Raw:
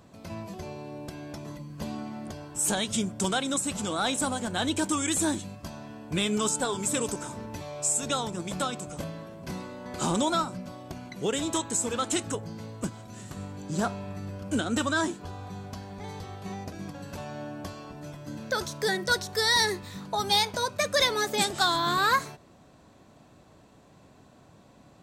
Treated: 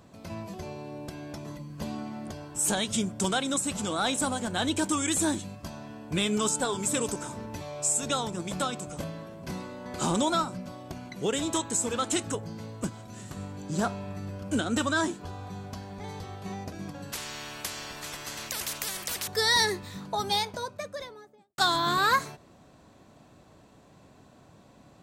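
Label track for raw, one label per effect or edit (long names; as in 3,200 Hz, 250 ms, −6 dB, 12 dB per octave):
17.120000	19.280000	every bin compressed towards the loudest bin 10 to 1
19.860000	21.580000	fade out and dull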